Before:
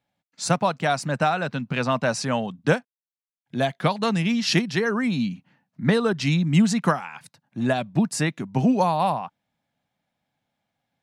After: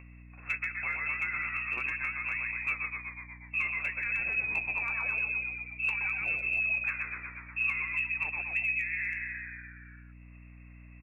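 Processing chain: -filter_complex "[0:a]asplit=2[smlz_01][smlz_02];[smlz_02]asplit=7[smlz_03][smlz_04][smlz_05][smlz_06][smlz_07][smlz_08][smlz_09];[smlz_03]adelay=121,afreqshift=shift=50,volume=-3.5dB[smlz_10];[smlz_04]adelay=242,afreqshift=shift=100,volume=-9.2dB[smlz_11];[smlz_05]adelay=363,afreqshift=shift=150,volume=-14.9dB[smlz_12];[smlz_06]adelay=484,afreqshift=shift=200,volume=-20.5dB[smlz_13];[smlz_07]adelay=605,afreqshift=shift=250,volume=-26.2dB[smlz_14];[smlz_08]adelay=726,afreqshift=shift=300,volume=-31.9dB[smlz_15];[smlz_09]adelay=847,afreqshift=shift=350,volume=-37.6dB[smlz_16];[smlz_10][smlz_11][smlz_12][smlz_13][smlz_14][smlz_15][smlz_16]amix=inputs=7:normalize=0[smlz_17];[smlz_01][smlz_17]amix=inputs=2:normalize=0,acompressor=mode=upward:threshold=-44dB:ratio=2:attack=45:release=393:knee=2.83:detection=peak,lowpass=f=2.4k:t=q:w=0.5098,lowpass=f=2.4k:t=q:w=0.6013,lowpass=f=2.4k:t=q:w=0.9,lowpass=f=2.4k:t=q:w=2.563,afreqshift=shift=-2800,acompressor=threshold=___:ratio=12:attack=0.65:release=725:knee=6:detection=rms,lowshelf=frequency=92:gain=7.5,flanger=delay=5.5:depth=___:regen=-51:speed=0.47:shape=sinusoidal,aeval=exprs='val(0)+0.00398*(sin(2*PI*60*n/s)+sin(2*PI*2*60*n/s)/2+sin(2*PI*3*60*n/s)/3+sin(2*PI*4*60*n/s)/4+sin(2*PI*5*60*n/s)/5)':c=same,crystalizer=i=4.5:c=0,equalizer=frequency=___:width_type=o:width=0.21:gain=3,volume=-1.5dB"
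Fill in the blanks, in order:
-25dB, 9.9, 140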